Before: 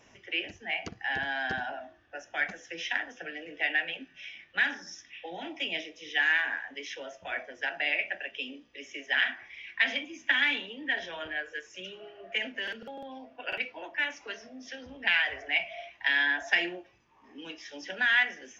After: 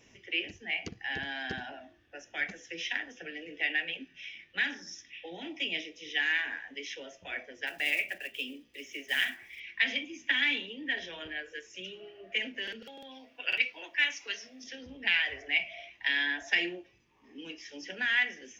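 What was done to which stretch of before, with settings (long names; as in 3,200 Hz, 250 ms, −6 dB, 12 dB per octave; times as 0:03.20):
0:07.67–0:09.62: one scale factor per block 5 bits
0:12.82–0:14.64: tilt shelving filter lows −7.5 dB, about 850 Hz
0:17.42–0:18.22: parametric band 3,700 Hz −7 dB 0.28 octaves
whole clip: flat-topped bell 970 Hz −8 dB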